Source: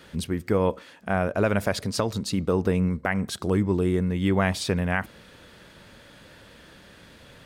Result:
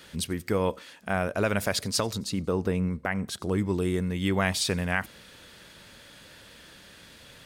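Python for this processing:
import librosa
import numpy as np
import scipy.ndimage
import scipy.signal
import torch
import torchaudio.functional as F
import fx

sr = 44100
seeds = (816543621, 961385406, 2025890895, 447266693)

y = fx.high_shelf(x, sr, hz=2200.0, db=fx.steps((0.0, 9.5), (2.15, 2.0), (3.57, 9.5)))
y = fx.echo_wet_highpass(y, sr, ms=90, feedback_pct=53, hz=5100.0, wet_db=-23.5)
y = F.gain(torch.from_numpy(y), -4.0).numpy()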